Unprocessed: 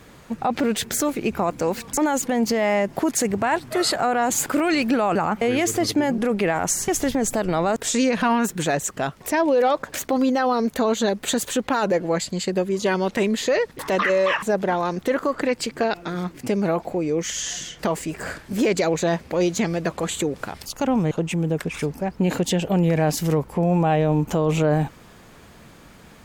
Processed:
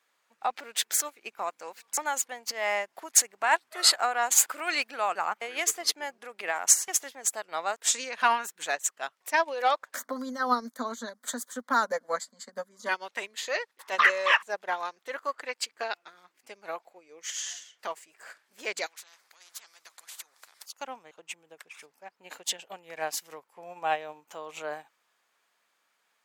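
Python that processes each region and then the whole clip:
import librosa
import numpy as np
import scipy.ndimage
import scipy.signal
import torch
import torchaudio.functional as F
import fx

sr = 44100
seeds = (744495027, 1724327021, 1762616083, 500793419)

y = fx.chain(x, sr, fx.fixed_phaser(hz=530.0, stages=8),
    fx.small_body(hz=(240.0, 780.0), ring_ms=60, db=17),
    fx.band_squash(depth_pct=40), at=(9.94, 12.89))
y = fx.chain(y, sr, fx.peak_eq(hz=2700.0, db=-10.0, octaves=0.74),
    fx.spectral_comp(ratio=4.0), at=(18.86, 20.66))
y = scipy.signal.sosfilt(scipy.signal.butter(2, 920.0, 'highpass', fs=sr, output='sos'), y)
y = fx.upward_expand(y, sr, threshold_db=-38.0, expansion=2.5)
y = y * librosa.db_to_amplitude(5.5)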